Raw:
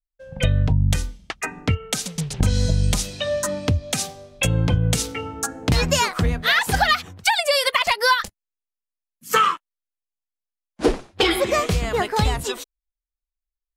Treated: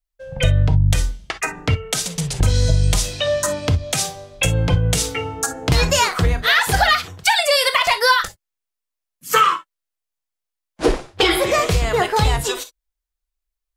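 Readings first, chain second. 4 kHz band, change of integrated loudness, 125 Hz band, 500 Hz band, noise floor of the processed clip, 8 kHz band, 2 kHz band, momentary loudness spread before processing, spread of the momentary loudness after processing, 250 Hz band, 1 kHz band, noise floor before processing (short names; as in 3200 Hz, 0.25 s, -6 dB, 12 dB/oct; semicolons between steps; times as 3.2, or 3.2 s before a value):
+3.5 dB, +3.0 dB, +3.0 dB, +3.0 dB, -83 dBFS, +4.0 dB, +3.0 dB, 10 LU, 9 LU, 0.0 dB, +3.0 dB, under -85 dBFS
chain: bell 230 Hz -12 dB 0.38 oct; in parallel at -2 dB: limiter -17 dBFS, peak gain reduction 11 dB; on the sum: non-linear reverb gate 80 ms flat, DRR 8.5 dB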